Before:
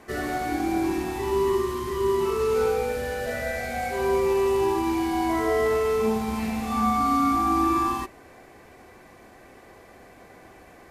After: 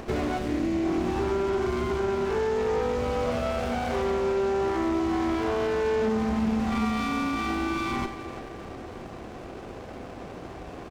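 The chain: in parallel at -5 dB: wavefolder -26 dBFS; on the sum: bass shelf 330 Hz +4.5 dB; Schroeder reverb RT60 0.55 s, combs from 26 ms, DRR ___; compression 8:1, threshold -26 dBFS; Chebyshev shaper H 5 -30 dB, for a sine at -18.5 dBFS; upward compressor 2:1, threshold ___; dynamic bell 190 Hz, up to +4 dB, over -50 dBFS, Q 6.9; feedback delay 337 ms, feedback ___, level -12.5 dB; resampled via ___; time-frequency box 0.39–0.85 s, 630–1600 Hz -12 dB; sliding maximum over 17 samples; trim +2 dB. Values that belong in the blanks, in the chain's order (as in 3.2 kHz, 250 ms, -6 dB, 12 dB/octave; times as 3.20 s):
10.5 dB, -36 dBFS, 44%, 16 kHz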